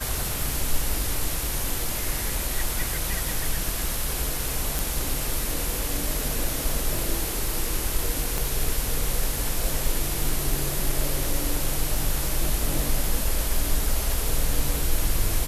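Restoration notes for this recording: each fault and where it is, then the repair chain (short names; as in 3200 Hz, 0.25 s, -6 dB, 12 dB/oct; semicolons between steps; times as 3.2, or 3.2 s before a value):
crackle 34/s -28 dBFS
4.79 pop
8.38 pop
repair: de-click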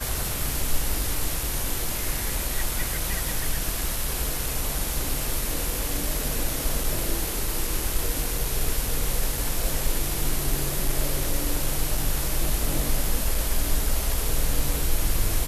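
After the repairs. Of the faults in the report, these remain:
none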